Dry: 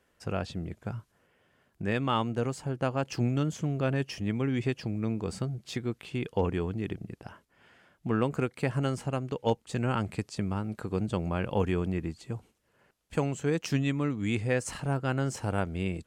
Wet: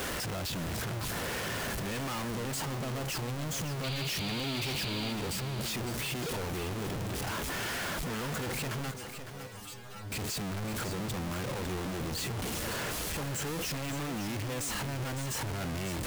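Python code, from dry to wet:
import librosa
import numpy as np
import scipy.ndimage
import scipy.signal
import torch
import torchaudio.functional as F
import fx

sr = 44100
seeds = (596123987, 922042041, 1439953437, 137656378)

y = np.sign(x) * np.sqrt(np.mean(np.square(x)))
y = fx.spec_paint(y, sr, seeds[0], shape='noise', start_s=3.83, length_s=1.3, low_hz=2100.0, high_hz=4900.0, level_db=-36.0)
y = fx.stiff_resonator(y, sr, f0_hz=99.0, decay_s=0.31, stiffness=0.002, at=(8.91, 10.12))
y = y + 10.0 ** (-9.5 / 20.0) * np.pad(y, (int(556 * sr / 1000.0), 0))[:len(y)]
y = F.gain(torch.from_numpy(y), -4.0).numpy()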